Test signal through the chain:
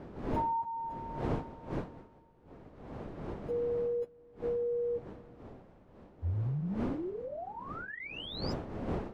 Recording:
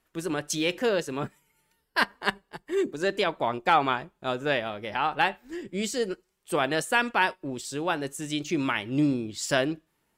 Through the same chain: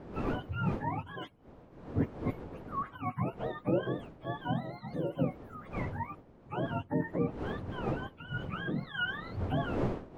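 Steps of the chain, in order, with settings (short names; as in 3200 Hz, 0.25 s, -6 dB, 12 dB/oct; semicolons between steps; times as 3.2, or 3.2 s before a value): spectrum mirrored in octaves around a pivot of 660 Hz; wind noise 430 Hz -34 dBFS; gain -8 dB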